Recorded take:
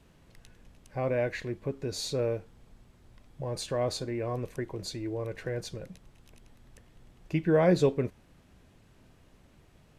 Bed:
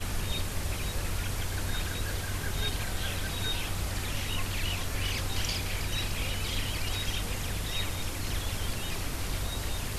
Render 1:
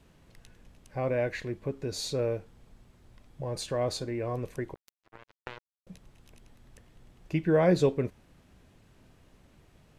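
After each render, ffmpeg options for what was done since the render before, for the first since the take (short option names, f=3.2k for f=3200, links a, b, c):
-filter_complex "[0:a]asettb=1/sr,asplit=3[a][b][c];[a]atrim=end=4.744[d];[b]atrim=start=4.74:end=5.87,asetpts=PTS-STARTPTS,afade=t=in:d=0.004:c=qsin,afade=t=out:st=1.126:d=0.004:c=qsin,acrusher=bits=3:mix=0:aa=0.5[e];[c]atrim=start=5.866[f];[d][e]acrossfade=d=0.004:c1=hsin:c2=qsin[g];[g][f]acrossfade=d=0.004:c1=qsin:c2=hsin"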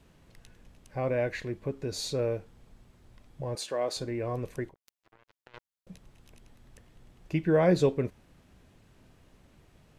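-filter_complex "[0:a]asettb=1/sr,asplit=3[a][b][c];[a]atrim=end=3.554[d];[b]atrim=start=3.55:end=3.97,asetpts=PTS-STARTPTS,afade=t=in:d=0.004:c=qsin,afade=t=out:st=0.416:d=0.004:c=qsin,highpass=330[e];[c]atrim=start=3.966[f];[d][e]acrossfade=d=0.004:c1=hsin:c2=qsin[g];[g][f]acrossfade=d=0.004:c1=qsin:c2=hsin,asettb=1/sr,asplit=3[h][i][j];[h]atrim=end=4.694[k];[i]atrim=start=4.69:end=5.54,asetpts=PTS-STARTPTS,afade=t=in:d=0.004:c=qsin,afade=t=out:st=0.846:d=0.004:c=qsin,acompressor=threshold=-56dB:ratio=4:attack=3.2:release=140:knee=1:detection=peak[l];[j]atrim=start=5.536[m];[k][l]acrossfade=d=0.004:c1=hsin:c2=qsin[n];[n][m]acrossfade=d=0.004:c1=qsin:c2=hsin"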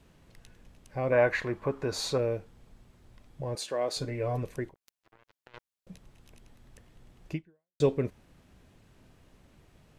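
-filter_complex "[0:a]asettb=1/sr,asplit=3[a][b][c];[a]atrim=end=1.124[d];[b]atrim=start=1.12:end=2.18,asetpts=PTS-STARTPTS,afade=t=in:d=0.004:c=qsin,afade=t=out:st=1.056:d=0.004:c=qsin,equalizer=f=1.1k:w=0.86:g=14[e];[c]atrim=start=2.176[f];[d][e]acrossfade=d=0.004:c1=hsin:c2=qsin[g];[g][f]acrossfade=d=0.004:c1=qsin:c2=hsin,asettb=1/sr,asplit=3[h][i][j];[h]atrim=end=3.934[k];[i]atrim=start=3.93:end=4.43,asetpts=PTS-STARTPTS,afade=t=in:d=0.004:c=qsin,afade=t=out:st=0.496:d=0.004:c=qsin,aecho=1:1:6.9:0.65,atrim=end_sample=22050[l];[j]atrim=start=4.426[m];[k][l]acrossfade=d=0.004:c1=hsin:c2=qsin[n];[n][m]acrossfade=d=0.004:c1=qsin:c2=hsin,asplit=2[o][p];[o]atrim=end=7.8,asetpts=PTS-STARTPTS,afade=t=out:st=7.33:d=0.47:c=exp[q];[p]atrim=start=7.8,asetpts=PTS-STARTPTS,afade=t=in:d=0.004:c=hsin[r];[q][r]concat=n=2:v=0:a=1"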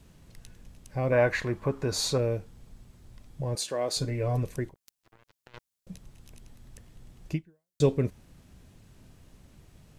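-af "bass=f=250:g=6,treble=f=4k:g=7"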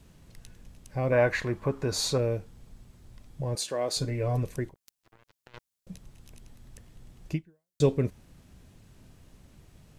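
-af anull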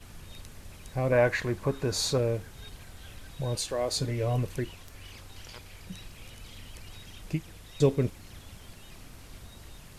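-filter_complex "[1:a]volume=-15.5dB[a];[0:a][a]amix=inputs=2:normalize=0"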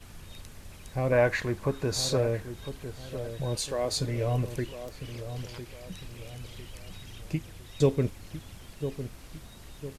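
-filter_complex "[0:a]asplit=2[a][b];[b]adelay=1004,lowpass=f=850:p=1,volume=-9.5dB,asplit=2[c][d];[d]adelay=1004,lowpass=f=850:p=1,volume=0.48,asplit=2[e][f];[f]adelay=1004,lowpass=f=850:p=1,volume=0.48,asplit=2[g][h];[h]adelay=1004,lowpass=f=850:p=1,volume=0.48,asplit=2[i][j];[j]adelay=1004,lowpass=f=850:p=1,volume=0.48[k];[a][c][e][g][i][k]amix=inputs=6:normalize=0"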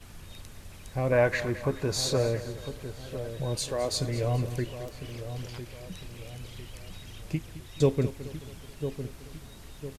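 -af "aecho=1:1:215|430|645|860:0.178|0.0854|0.041|0.0197"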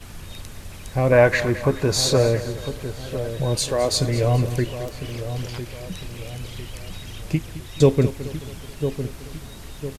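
-af "volume=8.5dB,alimiter=limit=-3dB:level=0:latency=1"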